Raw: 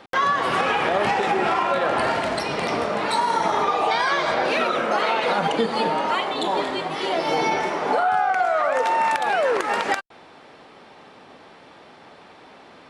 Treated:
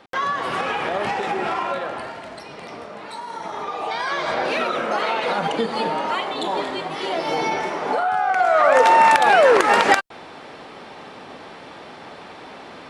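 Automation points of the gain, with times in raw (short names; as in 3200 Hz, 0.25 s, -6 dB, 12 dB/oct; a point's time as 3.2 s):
1.7 s -3 dB
2.12 s -12 dB
3.23 s -12 dB
4.34 s -1 dB
8.17 s -1 dB
8.73 s +7.5 dB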